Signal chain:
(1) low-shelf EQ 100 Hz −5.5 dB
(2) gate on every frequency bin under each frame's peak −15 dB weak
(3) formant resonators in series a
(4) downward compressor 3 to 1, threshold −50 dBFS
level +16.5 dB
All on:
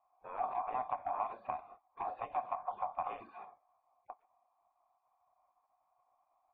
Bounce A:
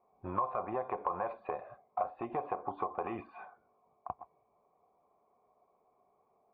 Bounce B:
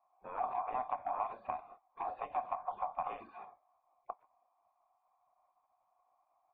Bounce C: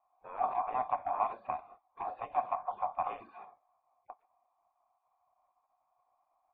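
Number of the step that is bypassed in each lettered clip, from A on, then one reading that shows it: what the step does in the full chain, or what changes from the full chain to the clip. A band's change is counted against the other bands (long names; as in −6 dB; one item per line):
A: 2, 250 Hz band +10.5 dB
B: 1, change in momentary loudness spread −4 LU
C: 4, average gain reduction 2.0 dB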